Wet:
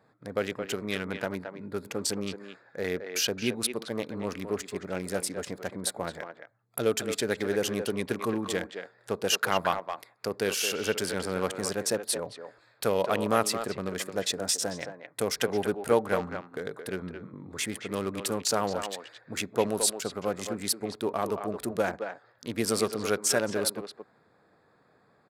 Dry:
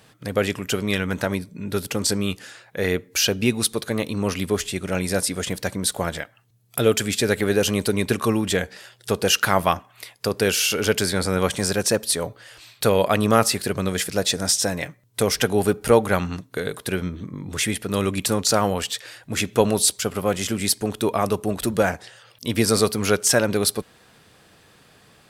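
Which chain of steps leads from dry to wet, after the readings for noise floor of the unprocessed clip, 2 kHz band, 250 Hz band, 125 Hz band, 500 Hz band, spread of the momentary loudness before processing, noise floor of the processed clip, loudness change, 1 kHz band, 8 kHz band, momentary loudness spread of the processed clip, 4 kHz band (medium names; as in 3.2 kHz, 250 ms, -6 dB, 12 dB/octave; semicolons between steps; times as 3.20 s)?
-55 dBFS, -8.0 dB, -9.5 dB, -13.0 dB, -7.0 dB, 11 LU, -65 dBFS, -8.0 dB, -7.0 dB, -8.0 dB, 12 LU, -8.0 dB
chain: local Wiener filter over 15 samples; high-pass 240 Hz 6 dB/octave; speakerphone echo 220 ms, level -7 dB; trim -6.5 dB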